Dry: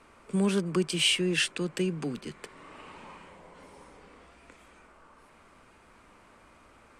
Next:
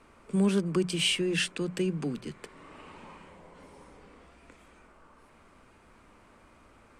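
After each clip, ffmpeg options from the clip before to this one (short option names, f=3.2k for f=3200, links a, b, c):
-af "lowshelf=f=360:g=5.5,bandreject=f=60:t=h:w=6,bandreject=f=120:t=h:w=6,bandreject=f=180:t=h:w=6,volume=-2.5dB"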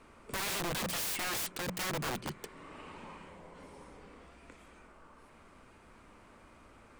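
-af "aeval=exprs='(mod(33.5*val(0)+1,2)-1)/33.5':c=same"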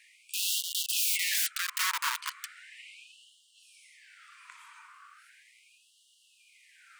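-af "afftfilt=real='re*gte(b*sr/1024,880*pow(2800/880,0.5+0.5*sin(2*PI*0.37*pts/sr)))':imag='im*gte(b*sr/1024,880*pow(2800/880,0.5+0.5*sin(2*PI*0.37*pts/sr)))':win_size=1024:overlap=0.75,volume=8dB"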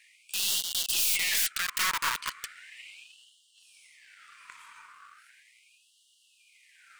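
-filter_complex "[0:a]aeval=exprs='(tanh(14.1*val(0)+0.2)-tanh(0.2))/14.1':c=same,asplit=2[a][b];[b]aeval=exprs='sgn(val(0))*max(abs(val(0))-0.00178,0)':c=same,volume=-5dB[c];[a][c]amix=inputs=2:normalize=0"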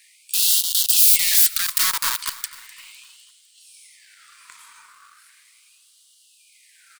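-af "aexciter=amount=2.5:drive=6.1:freq=3.7k,aecho=1:1:253|506|759|1012:0.119|0.0559|0.0263|0.0123,volume=1.5dB"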